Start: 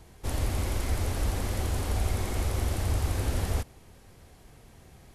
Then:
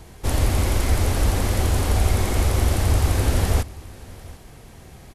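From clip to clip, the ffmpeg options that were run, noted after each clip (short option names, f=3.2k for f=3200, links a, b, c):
-af "aecho=1:1:744:0.0841,volume=9dB"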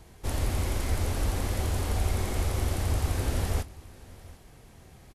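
-filter_complex "[0:a]asplit=2[a][b];[b]adelay=24,volume=-13.5dB[c];[a][c]amix=inputs=2:normalize=0,volume=-8.5dB"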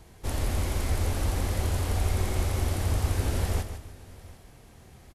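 -af "aecho=1:1:151|302|453:0.316|0.098|0.0304"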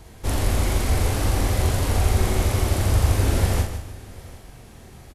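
-filter_complex "[0:a]asplit=2[a][b];[b]adelay=42,volume=-4.5dB[c];[a][c]amix=inputs=2:normalize=0,volume=6dB"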